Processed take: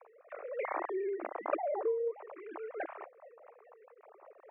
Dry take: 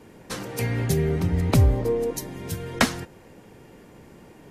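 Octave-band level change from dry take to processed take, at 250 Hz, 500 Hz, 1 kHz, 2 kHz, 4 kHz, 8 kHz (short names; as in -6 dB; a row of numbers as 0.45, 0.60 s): -19.0 dB, -6.5 dB, -5.5 dB, -14.5 dB, under -35 dB, under -40 dB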